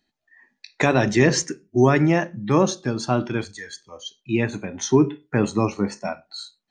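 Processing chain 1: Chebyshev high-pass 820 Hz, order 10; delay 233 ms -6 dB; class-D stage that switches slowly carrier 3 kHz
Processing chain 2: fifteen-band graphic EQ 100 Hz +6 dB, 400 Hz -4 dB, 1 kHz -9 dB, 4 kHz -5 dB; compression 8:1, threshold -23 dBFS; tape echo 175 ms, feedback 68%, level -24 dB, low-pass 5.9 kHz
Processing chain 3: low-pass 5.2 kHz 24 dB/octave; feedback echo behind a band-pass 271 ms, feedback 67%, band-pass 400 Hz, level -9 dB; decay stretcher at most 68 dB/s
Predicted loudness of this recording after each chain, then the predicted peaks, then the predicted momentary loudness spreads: -30.0 LUFS, -30.0 LUFS, -20.5 LUFS; -12.5 dBFS, -11.5 dBFS, -3.5 dBFS; 3 LU, 12 LU, 14 LU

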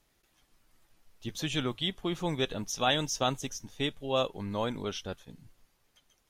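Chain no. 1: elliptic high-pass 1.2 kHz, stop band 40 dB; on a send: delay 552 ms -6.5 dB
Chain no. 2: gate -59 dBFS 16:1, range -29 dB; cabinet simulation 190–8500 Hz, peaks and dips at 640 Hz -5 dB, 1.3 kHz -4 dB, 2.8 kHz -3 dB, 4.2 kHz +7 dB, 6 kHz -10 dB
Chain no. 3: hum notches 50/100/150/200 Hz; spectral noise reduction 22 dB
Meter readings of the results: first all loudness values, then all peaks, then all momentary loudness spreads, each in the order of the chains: -35.0 LUFS, -33.5 LUFS, -32.5 LUFS; -14.5 dBFS, -13.5 dBFS, -13.0 dBFS; 18 LU, 12 LU, 12 LU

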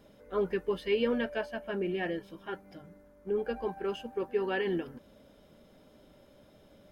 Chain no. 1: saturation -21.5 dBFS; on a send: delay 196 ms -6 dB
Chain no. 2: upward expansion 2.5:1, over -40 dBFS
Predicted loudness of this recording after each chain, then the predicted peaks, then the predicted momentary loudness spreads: -33.5 LUFS, -39.5 LUFS; -20.0 dBFS, -18.5 dBFS; 12 LU, 15 LU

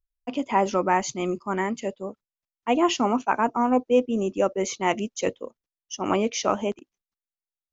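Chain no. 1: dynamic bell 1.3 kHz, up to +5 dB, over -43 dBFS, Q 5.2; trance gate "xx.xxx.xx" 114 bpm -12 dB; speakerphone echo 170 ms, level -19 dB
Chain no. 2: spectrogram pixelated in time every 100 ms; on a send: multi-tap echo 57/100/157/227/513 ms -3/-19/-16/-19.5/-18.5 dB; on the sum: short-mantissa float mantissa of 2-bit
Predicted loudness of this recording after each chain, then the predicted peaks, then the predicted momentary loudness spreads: -25.5 LUFS, -26.0 LUFS; -6.0 dBFS, -8.5 dBFS; 12 LU, 13 LU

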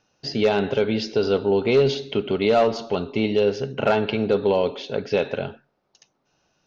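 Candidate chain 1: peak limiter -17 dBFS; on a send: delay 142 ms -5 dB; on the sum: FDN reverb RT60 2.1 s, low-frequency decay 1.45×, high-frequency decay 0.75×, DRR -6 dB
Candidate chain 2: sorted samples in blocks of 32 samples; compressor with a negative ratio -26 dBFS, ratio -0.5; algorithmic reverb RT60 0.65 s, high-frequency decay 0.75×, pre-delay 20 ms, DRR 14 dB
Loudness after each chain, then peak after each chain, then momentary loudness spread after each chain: -17.5 LUFS, -26.5 LUFS; -3.5 dBFS, -7.0 dBFS; 9 LU, 4 LU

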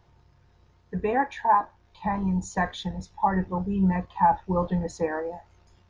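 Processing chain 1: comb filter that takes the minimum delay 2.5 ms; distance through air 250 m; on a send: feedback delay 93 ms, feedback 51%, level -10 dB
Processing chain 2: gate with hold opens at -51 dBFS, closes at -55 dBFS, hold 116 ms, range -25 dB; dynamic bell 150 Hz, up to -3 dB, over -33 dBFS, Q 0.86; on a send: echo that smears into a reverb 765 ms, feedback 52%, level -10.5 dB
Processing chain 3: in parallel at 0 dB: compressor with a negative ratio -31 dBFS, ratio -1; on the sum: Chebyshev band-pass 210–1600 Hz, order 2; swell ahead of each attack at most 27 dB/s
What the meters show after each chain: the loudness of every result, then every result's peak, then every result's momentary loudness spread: -29.5 LUFS, -27.0 LUFS, -23.0 LUFS; -12.0 dBFS, -10.0 dBFS, -7.0 dBFS; 11 LU, 10 LU, 10 LU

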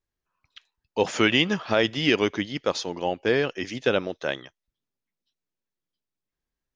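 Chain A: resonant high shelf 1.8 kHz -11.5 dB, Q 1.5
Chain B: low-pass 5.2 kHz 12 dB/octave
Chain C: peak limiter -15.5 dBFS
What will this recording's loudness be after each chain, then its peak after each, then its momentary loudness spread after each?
-26.0 LUFS, -25.0 LUFS, -29.5 LUFS; -7.0 dBFS, -6.5 dBFS, -15.5 dBFS; 8 LU, 10 LU, 6 LU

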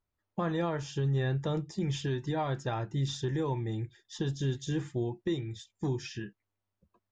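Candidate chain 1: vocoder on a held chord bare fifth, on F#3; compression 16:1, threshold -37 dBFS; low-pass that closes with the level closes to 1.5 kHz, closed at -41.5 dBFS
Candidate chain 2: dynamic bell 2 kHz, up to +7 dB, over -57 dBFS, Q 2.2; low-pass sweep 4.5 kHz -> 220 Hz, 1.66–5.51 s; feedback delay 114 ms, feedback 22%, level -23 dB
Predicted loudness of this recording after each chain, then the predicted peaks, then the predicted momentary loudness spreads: -43.5 LUFS, -32.0 LUFS; -26.5 dBFS, -17.0 dBFS; 5 LU, 9 LU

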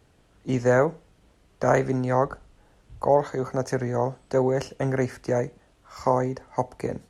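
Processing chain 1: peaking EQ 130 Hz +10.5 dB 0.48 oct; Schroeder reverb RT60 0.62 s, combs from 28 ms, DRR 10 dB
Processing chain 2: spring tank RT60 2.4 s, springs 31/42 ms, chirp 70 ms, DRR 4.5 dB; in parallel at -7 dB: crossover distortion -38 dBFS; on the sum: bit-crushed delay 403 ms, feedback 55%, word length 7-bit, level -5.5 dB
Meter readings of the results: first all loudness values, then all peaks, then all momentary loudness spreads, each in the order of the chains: -22.0 LUFS, -20.5 LUFS; -5.0 dBFS, -2.5 dBFS; 10 LU, 6 LU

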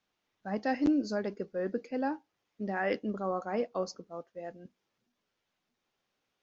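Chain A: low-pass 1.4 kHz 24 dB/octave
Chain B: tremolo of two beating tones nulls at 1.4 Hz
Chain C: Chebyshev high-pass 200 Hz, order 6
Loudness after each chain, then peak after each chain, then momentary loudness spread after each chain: -34.0 LUFS, -36.0 LUFS, -34.0 LUFS; -19.5 dBFS, -18.0 dBFS, -19.0 dBFS; 16 LU, 15 LU, 16 LU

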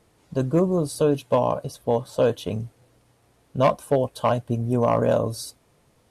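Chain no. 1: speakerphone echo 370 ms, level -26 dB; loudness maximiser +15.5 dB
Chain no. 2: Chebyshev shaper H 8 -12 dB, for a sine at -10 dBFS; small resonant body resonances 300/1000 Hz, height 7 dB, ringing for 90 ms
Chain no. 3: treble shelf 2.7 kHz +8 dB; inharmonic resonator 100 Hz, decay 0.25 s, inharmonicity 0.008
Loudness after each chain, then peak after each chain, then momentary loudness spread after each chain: -12.0 LUFS, -21.5 LUFS, -33.0 LUFS; -1.0 dBFS, -6.5 dBFS, -15.0 dBFS; 8 LU, 11 LU, 10 LU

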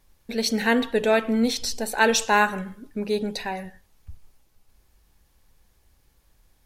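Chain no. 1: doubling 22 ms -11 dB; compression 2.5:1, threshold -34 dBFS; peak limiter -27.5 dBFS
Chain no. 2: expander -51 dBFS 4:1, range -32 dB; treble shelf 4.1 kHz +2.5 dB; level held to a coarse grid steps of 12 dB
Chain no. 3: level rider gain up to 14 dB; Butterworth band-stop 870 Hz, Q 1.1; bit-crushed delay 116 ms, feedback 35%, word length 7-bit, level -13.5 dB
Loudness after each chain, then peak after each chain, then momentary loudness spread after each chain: -37.0 LUFS, -28.0 LUFS, -17.5 LUFS; -27.5 dBFS, -13.0 dBFS, -2.5 dBFS; 15 LU, 14 LU, 15 LU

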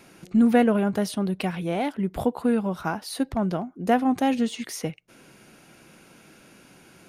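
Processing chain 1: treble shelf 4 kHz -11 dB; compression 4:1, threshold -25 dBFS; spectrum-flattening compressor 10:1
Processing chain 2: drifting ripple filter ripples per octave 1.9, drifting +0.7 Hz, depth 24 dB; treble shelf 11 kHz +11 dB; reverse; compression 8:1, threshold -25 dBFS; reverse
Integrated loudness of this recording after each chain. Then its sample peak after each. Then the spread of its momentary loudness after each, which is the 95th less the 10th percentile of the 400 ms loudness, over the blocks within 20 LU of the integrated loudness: -39.0 LUFS, -29.5 LUFS; -14.0 dBFS, -15.0 dBFS; 6 LU, 17 LU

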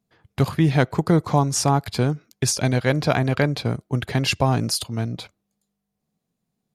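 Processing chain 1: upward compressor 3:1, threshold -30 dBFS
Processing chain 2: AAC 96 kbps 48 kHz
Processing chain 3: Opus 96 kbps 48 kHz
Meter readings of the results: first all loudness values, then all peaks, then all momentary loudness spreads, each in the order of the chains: -22.0 LUFS, -22.0 LUFS, -22.0 LUFS; -5.0 dBFS, -5.0 dBFS, -5.5 dBFS; 8 LU, 8 LU, 8 LU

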